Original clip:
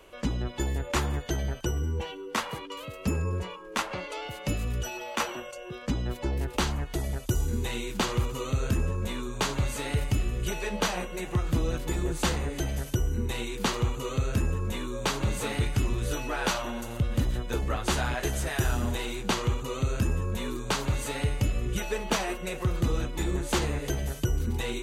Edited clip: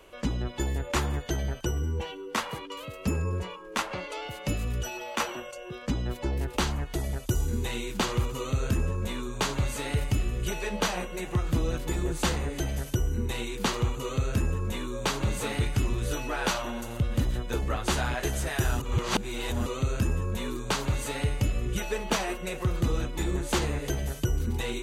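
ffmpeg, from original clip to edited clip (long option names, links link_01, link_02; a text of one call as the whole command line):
ffmpeg -i in.wav -filter_complex "[0:a]asplit=3[link_01][link_02][link_03];[link_01]atrim=end=18.802[link_04];[link_02]atrim=start=18.798:end=19.662,asetpts=PTS-STARTPTS,areverse[link_05];[link_03]atrim=start=19.658[link_06];[link_04][link_05]acrossfade=duration=0.004:curve1=hsin:curve2=hsin[link_07];[link_07][link_06]acrossfade=duration=0.004:curve1=hsin:curve2=hsin" out.wav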